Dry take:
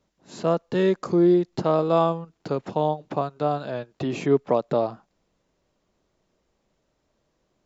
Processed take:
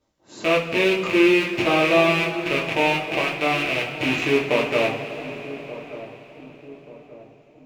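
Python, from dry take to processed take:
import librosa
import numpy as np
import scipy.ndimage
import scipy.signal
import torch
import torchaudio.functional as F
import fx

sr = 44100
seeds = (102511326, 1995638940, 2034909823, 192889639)

y = fx.rattle_buzz(x, sr, strikes_db=-37.0, level_db=-12.0)
y = fx.echo_filtered(y, sr, ms=1182, feedback_pct=52, hz=850.0, wet_db=-14)
y = fx.rev_double_slope(y, sr, seeds[0], early_s=0.33, late_s=4.8, knee_db=-18, drr_db=-4.5)
y = y * librosa.db_to_amplitude(-4.0)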